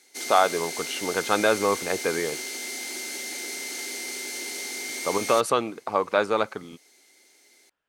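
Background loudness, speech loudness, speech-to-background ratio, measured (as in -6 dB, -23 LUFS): -31.5 LUFS, -25.5 LUFS, 6.0 dB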